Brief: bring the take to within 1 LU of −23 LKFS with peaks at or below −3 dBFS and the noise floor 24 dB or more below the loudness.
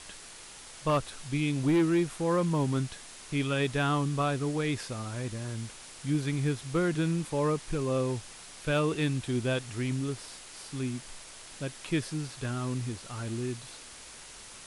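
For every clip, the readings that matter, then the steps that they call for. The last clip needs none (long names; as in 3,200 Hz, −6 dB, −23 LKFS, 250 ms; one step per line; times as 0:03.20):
share of clipped samples 0.4%; peaks flattened at −20.0 dBFS; background noise floor −48 dBFS; target noise floor −55 dBFS; integrated loudness −31.0 LKFS; sample peak −20.0 dBFS; target loudness −23.0 LKFS
→ clipped peaks rebuilt −20 dBFS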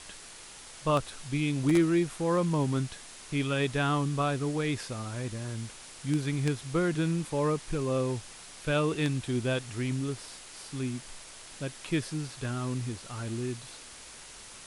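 share of clipped samples 0.0%; background noise floor −48 dBFS; target noise floor −55 dBFS
→ broadband denoise 7 dB, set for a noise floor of −48 dBFS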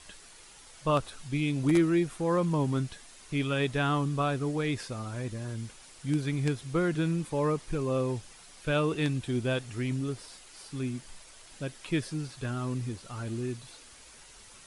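background noise floor −53 dBFS; target noise floor −55 dBFS
→ broadband denoise 6 dB, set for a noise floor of −53 dBFS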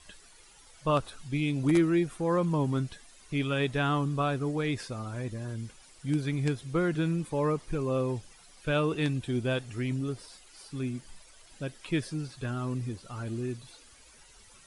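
background noise floor −56 dBFS; integrated loudness −31.0 LKFS; sample peak −11.5 dBFS; target loudness −23.0 LKFS
→ level +8 dB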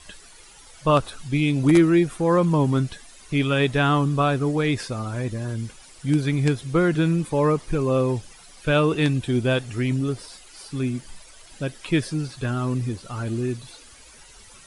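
integrated loudness −23.0 LKFS; sample peak −3.5 dBFS; background noise floor −48 dBFS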